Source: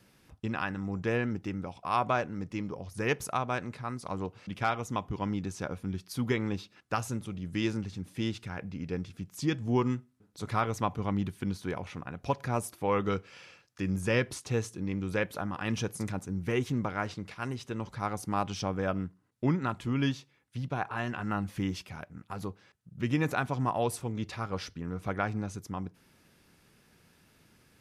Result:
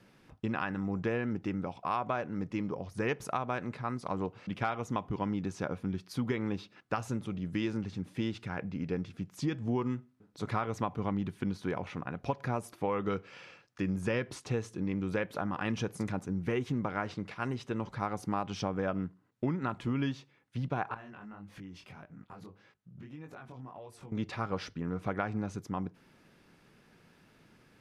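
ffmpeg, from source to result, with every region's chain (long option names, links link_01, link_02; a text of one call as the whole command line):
ffmpeg -i in.wav -filter_complex "[0:a]asettb=1/sr,asplit=3[link_01][link_02][link_03];[link_01]atrim=end=20.944[link_04];[link_02]atrim=start=20.94:end=24.12,asetpts=PTS-STARTPTS,afade=type=in:duration=0.004:curve=qsin,afade=type=out:start_time=3.176:duration=0.004:curve=qsin,acompressor=threshold=-42dB:ratio=16:attack=3.2:release=140:knee=1:detection=peak,flanger=delay=18.5:depth=5.5:speed=1.7[link_05];[link_03]atrim=start=24.116[link_06];[link_04][link_05]acrossfade=duration=0.004:curve1=hsin:curve2=qsin[link_07];[link_07][link_06]acrossfade=duration=0.004:curve1=qsin:curve2=hsin,lowpass=frequency=2600:poles=1,equalizer=frequency=68:width=1.6:gain=-10.5,acompressor=threshold=-31dB:ratio=6,volume=3dB" out.wav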